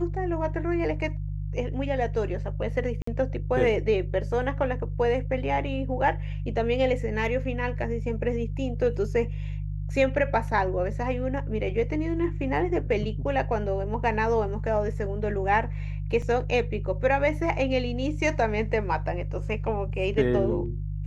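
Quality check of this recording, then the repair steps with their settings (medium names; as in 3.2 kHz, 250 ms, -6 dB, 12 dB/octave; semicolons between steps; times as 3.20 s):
hum 50 Hz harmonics 3 -31 dBFS
3.02–3.07 s: dropout 54 ms
16.22 s: dropout 3.7 ms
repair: de-hum 50 Hz, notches 3; interpolate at 3.02 s, 54 ms; interpolate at 16.22 s, 3.7 ms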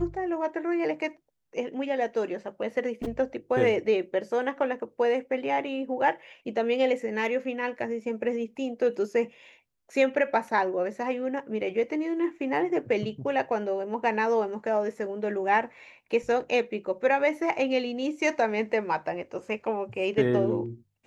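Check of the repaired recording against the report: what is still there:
nothing left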